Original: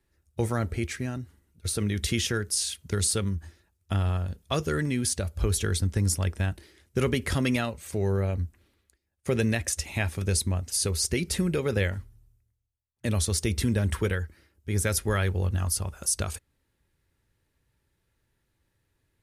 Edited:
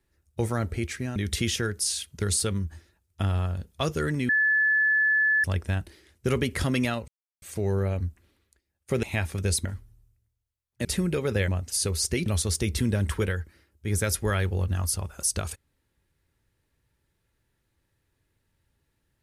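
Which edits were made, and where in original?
0:01.16–0:01.87: remove
0:05.00–0:06.15: beep over 1,730 Hz −19 dBFS
0:07.79: splice in silence 0.34 s
0:09.40–0:09.86: remove
0:10.48–0:11.26: swap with 0:11.89–0:13.09

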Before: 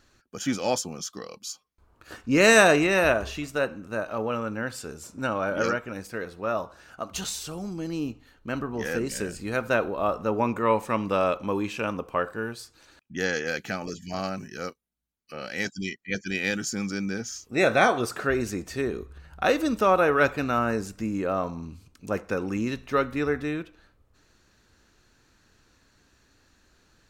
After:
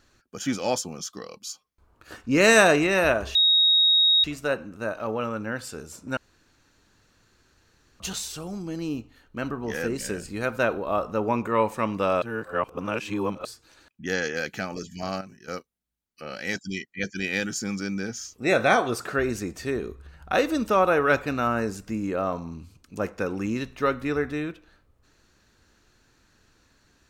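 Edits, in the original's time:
0:03.35: insert tone 3,770 Hz −15.5 dBFS 0.89 s
0:05.28–0:07.11: fill with room tone
0:11.33–0:12.56: reverse
0:14.32–0:14.59: clip gain −9.5 dB

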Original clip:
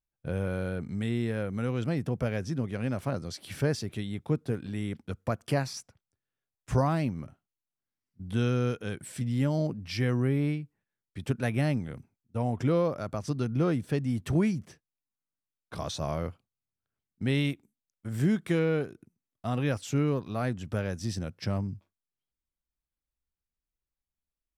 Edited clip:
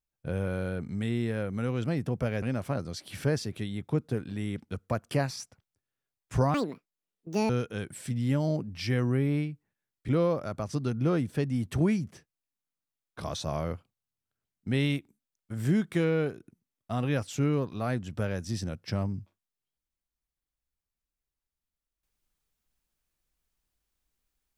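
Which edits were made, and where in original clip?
0:02.42–0:02.79: remove
0:06.91–0:08.60: play speed 177%
0:11.19–0:12.63: remove

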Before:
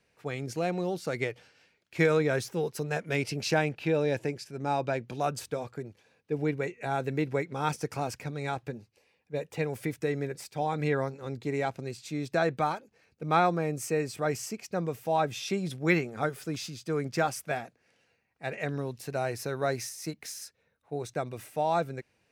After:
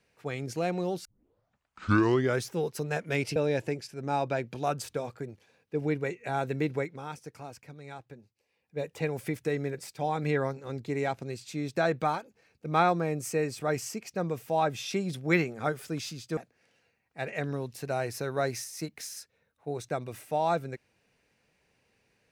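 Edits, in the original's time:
0:01.05: tape start 1.37 s
0:03.36–0:03.93: remove
0:07.29–0:09.40: duck −11 dB, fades 0.37 s
0:16.94–0:17.62: remove

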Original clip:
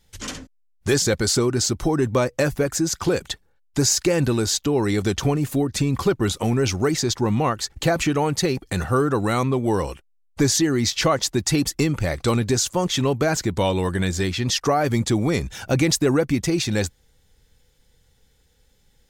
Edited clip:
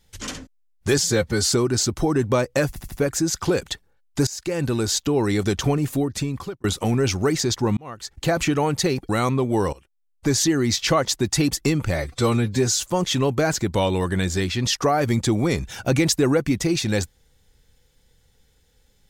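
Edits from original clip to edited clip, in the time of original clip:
0:00.98–0:01.32: time-stretch 1.5×
0:02.51: stutter 0.08 s, 4 plays
0:03.86–0:04.70: fade in equal-power, from −20 dB
0:05.31–0:06.23: fade out equal-power
0:07.36–0:07.98: fade in
0:08.68–0:09.23: remove
0:09.87–0:10.60: fade in, from −18 dB
0:12.08–0:12.70: time-stretch 1.5×

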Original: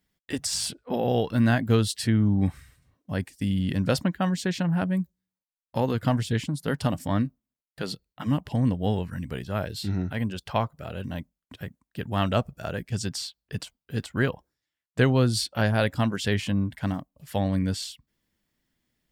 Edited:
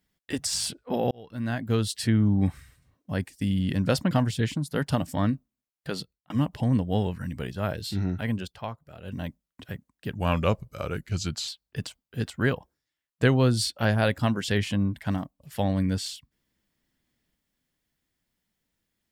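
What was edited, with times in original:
0:01.11–0:02.09: fade in linear
0:04.11–0:06.03: remove
0:07.87–0:08.22: fade out
0:10.34–0:11.07: duck −9.5 dB, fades 0.13 s
0:12.08–0:13.24: play speed 88%

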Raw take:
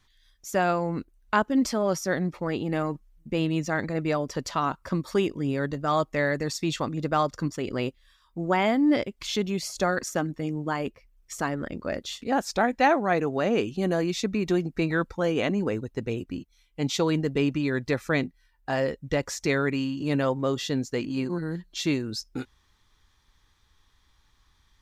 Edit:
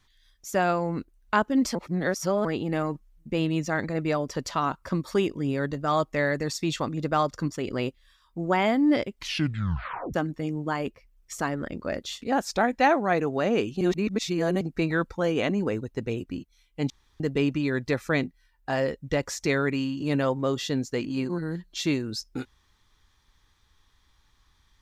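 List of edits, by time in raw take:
0:01.75–0:02.45: reverse
0:09.16: tape stop 0.98 s
0:13.81–0:14.61: reverse
0:16.90–0:17.20: fill with room tone

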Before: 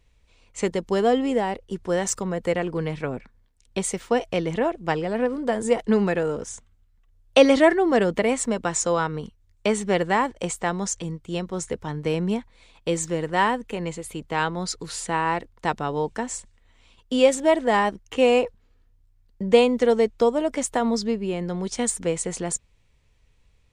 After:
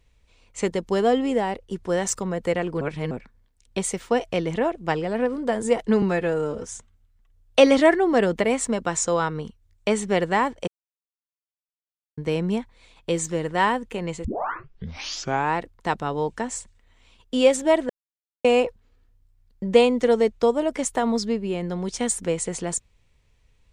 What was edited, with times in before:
0:02.81–0:03.11: reverse
0:06.02–0:06.45: time-stretch 1.5×
0:10.46–0:11.96: silence
0:14.03: tape start 1.32 s
0:17.68–0:18.23: silence

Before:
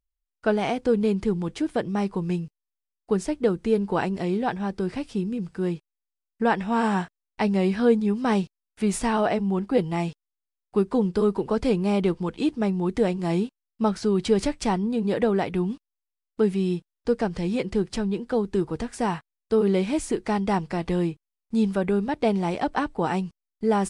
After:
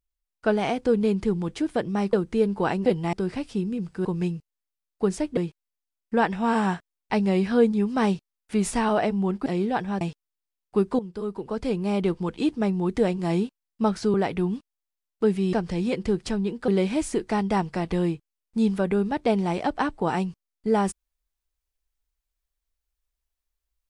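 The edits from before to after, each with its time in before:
0:02.13–0:03.45: move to 0:05.65
0:04.18–0:04.73: swap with 0:09.74–0:10.01
0:10.99–0:12.28: fade in, from −14.5 dB
0:14.14–0:15.31: remove
0:16.70–0:17.20: remove
0:18.35–0:19.65: remove

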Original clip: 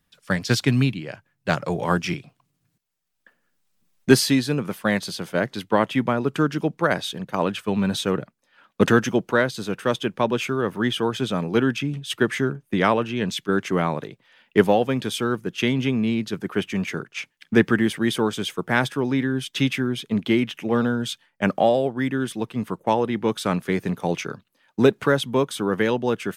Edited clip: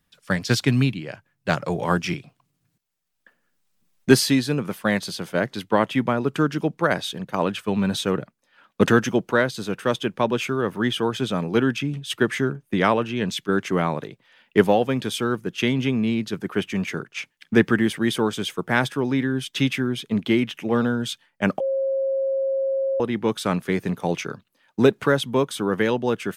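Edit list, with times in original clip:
0:21.60–0:23.00: beep over 539 Hz −20 dBFS

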